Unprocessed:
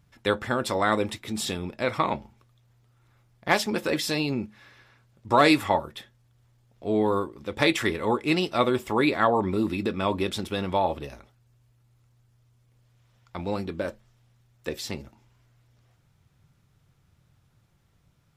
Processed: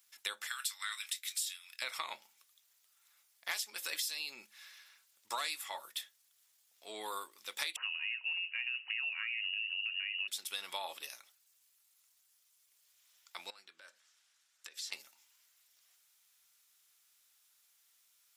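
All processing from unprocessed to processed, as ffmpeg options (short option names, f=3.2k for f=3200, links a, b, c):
-filter_complex "[0:a]asettb=1/sr,asplit=3[a][b][c];[a]atrim=end=0.474[d];[b]atrim=start=0.47:end=1.82,asetpts=PTS-STARTPTS,afade=t=in:d=0.004:c=qsin,afade=t=out:st=1.346:d=0.004:c=qsin,highpass=f=1.4k:w=0.5412,highpass=f=1.4k:w=1.3066,asplit=2[e][f];[f]adelay=24,volume=-12dB[g];[e][g]amix=inputs=2:normalize=0,atrim=end_sample=59535[h];[c]atrim=start=1.816[i];[d][h]acrossfade=d=0.004:c1=hsin:c2=qsin[j];[j][i]acrossfade=d=0.004:c1=qsin:c2=hsin,asettb=1/sr,asplit=3[k][l][m];[k]atrim=end=7.764[n];[l]atrim=start=7.76:end=10.28,asetpts=PTS-STARTPTS,afade=t=in:d=0.004:c=qsin,afade=t=out:st=2.516:d=0.004:c=qsin,acompressor=threshold=-25dB:ratio=2.5:attack=3.2:release=140:knee=1:detection=peak,lowshelf=f=410:g=6,lowpass=f=2.6k:t=q:w=0.5098,lowpass=f=2.6k:t=q:w=0.6013,lowpass=f=2.6k:t=q:w=0.9,lowpass=f=2.6k:t=q:w=2.563,afreqshift=-3000[o];[m]atrim=start=10.276[p];[n][o]acrossfade=d=0.004:c1=hsin:c2=qsin[q];[q][p]acrossfade=d=0.004:c1=qsin:c2=hsin,asettb=1/sr,asplit=3[r][s][t];[r]atrim=end=13.504[u];[s]atrim=start=13.5:end=14.92,asetpts=PTS-STARTPTS,afade=t=in:d=0.004:c=qsin,afade=t=out:st=1.416:d=0.004:c=qsin,acompressor=threshold=-43dB:ratio=8:attack=3.2:release=140:knee=1:detection=peak,highpass=150,lowpass=7.9k,equalizer=f=1.5k:w=2.5:g=6.5[v];[t]atrim=start=14.916[w];[u][v]acrossfade=d=0.004:c1=hsin:c2=qsin[x];[x][w]acrossfade=d=0.004:c1=qsin:c2=hsin,highpass=f=1.1k:p=1,aderivative,acompressor=threshold=-44dB:ratio=8,volume=9dB"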